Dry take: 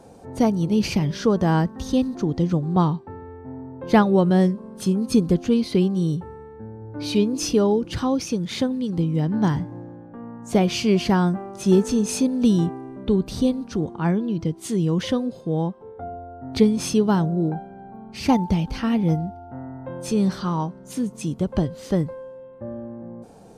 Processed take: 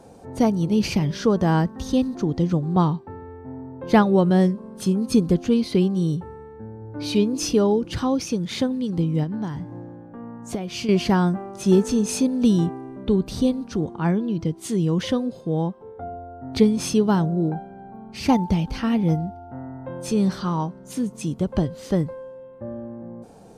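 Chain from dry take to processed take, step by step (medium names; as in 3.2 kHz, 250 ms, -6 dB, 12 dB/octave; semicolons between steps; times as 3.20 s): 9.23–10.89 s: compression 10:1, threshold -25 dBFS, peak gain reduction 13 dB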